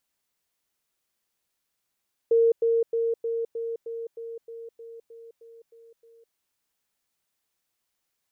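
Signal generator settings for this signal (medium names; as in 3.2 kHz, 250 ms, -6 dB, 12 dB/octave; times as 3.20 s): level ladder 460 Hz -16 dBFS, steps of -3 dB, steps 13, 0.21 s 0.10 s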